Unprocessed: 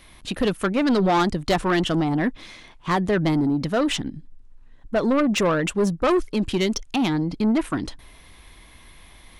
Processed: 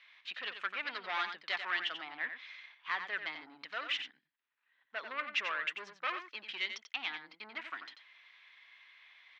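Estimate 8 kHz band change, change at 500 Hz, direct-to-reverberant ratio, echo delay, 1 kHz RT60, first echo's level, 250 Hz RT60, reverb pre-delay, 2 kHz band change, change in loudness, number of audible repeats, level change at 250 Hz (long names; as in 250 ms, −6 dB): −24.5 dB, −27.5 dB, no reverb audible, 90 ms, no reverb audible, −8.5 dB, no reverb audible, no reverb audible, −5.5 dB, −15.5 dB, 1, −38.0 dB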